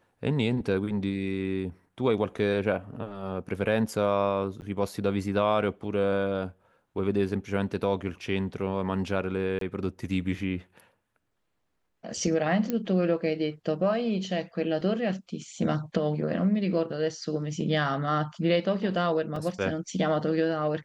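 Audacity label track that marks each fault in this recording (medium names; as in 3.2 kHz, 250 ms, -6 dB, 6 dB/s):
4.610000	4.620000	dropout 9.6 ms
9.590000	9.610000	dropout 23 ms
12.700000	12.700000	pop -15 dBFS
14.810000	14.810000	dropout 2.3 ms
19.360000	19.360000	dropout 2.7 ms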